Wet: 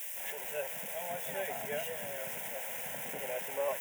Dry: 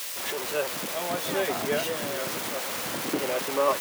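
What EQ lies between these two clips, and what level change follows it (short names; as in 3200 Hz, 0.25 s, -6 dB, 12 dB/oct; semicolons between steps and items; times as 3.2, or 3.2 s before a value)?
HPF 110 Hz; high shelf 9600 Hz +4 dB; fixed phaser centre 1200 Hz, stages 6; -7.5 dB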